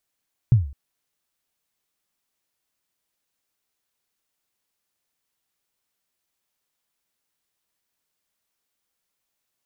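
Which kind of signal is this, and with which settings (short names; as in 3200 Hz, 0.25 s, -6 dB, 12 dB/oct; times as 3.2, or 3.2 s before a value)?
kick drum length 0.21 s, from 130 Hz, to 69 Hz, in 0.147 s, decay 0.42 s, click off, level -8 dB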